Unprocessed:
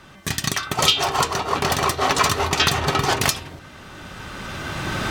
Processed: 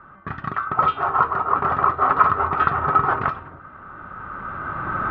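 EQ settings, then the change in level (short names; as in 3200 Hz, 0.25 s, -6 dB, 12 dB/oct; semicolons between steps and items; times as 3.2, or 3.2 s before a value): synth low-pass 1300 Hz, resonance Q 6.3; air absorption 220 m; -5.0 dB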